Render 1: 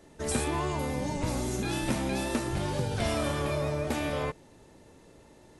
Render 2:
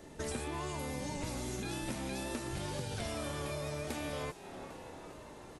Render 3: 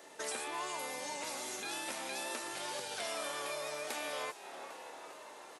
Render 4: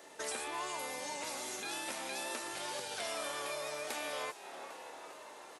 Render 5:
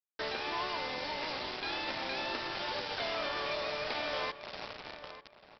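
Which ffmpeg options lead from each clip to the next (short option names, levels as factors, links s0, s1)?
-filter_complex "[0:a]asplit=6[s0][s1][s2][s3][s4][s5];[s1]adelay=400,afreqshift=110,volume=0.0794[s6];[s2]adelay=800,afreqshift=220,volume=0.049[s7];[s3]adelay=1200,afreqshift=330,volume=0.0305[s8];[s4]adelay=1600,afreqshift=440,volume=0.0188[s9];[s5]adelay=2000,afreqshift=550,volume=0.0117[s10];[s0][s6][s7][s8][s9][s10]amix=inputs=6:normalize=0,acrossover=split=1600|4400[s11][s12][s13];[s11]acompressor=threshold=0.00794:ratio=4[s14];[s12]acompressor=threshold=0.002:ratio=4[s15];[s13]acompressor=threshold=0.00251:ratio=4[s16];[s14][s15][s16]amix=inputs=3:normalize=0,volume=1.41"
-af "highpass=630,volume=1.5"
-af "equalizer=f=71:t=o:w=0.54:g=7"
-filter_complex "[0:a]aresample=11025,acrusher=bits=6:mix=0:aa=0.000001,aresample=44100,asplit=2[s0][s1];[s1]adelay=893,lowpass=f=2500:p=1,volume=0.237,asplit=2[s2][s3];[s3]adelay=893,lowpass=f=2500:p=1,volume=0.21,asplit=2[s4][s5];[s5]adelay=893,lowpass=f=2500:p=1,volume=0.21[s6];[s0][s2][s4][s6]amix=inputs=4:normalize=0,volume=1.5"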